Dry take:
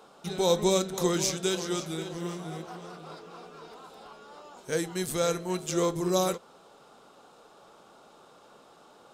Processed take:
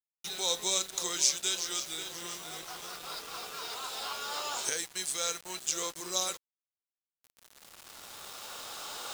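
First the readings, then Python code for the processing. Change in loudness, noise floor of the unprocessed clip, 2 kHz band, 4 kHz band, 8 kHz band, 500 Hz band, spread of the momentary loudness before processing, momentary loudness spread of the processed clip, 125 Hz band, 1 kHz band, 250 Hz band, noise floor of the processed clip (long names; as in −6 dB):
−4.0 dB, −56 dBFS, 0.0 dB, +3.5 dB, +4.5 dB, −13.5 dB, 21 LU, 15 LU, −21.0 dB, −4.0 dB, −17.5 dB, below −85 dBFS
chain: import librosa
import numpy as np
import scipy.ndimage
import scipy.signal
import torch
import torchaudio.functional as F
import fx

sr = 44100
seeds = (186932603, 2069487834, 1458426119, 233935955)

y = fx.recorder_agc(x, sr, target_db=-19.0, rise_db_per_s=7.4, max_gain_db=30)
y = fx.weighting(y, sr, curve='ITU-R 468')
y = fx.quant_dither(y, sr, seeds[0], bits=6, dither='none')
y = F.gain(torch.from_numpy(y), -8.0).numpy()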